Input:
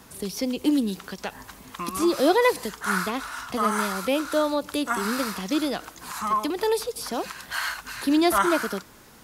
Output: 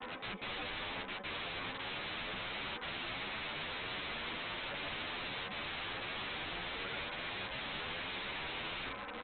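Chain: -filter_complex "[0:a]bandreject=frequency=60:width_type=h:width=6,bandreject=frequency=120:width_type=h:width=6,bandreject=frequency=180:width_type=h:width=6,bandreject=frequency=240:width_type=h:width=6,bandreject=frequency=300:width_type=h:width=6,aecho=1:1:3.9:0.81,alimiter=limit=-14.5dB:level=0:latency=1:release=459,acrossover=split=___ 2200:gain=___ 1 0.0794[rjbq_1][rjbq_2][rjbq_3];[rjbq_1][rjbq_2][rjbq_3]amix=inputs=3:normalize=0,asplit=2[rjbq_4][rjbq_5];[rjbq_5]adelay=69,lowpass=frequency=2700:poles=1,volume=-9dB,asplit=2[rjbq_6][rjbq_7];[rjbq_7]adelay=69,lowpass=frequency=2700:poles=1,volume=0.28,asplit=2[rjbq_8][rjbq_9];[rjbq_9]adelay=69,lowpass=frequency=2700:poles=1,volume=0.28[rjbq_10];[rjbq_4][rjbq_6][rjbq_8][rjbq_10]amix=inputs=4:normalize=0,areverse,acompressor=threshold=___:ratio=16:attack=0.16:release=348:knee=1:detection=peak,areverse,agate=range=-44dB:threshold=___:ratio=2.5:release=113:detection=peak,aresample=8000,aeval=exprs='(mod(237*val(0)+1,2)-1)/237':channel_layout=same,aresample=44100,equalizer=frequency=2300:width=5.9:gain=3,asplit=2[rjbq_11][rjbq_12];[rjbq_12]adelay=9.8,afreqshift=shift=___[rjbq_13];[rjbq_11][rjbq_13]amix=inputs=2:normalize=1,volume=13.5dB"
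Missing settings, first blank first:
280, 0.0708, -33dB, -50dB, 1.4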